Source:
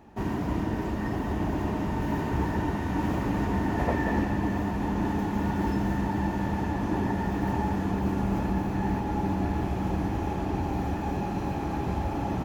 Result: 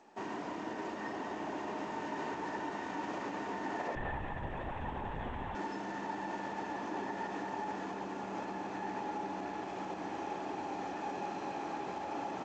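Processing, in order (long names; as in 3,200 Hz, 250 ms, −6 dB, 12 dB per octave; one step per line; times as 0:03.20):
brickwall limiter −20.5 dBFS, peak gain reduction 6 dB
high-pass filter 410 Hz 12 dB per octave
0:03.95–0:05.55: linear-prediction vocoder at 8 kHz whisper
level −4 dB
G.722 64 kbit/s 16,000 Hz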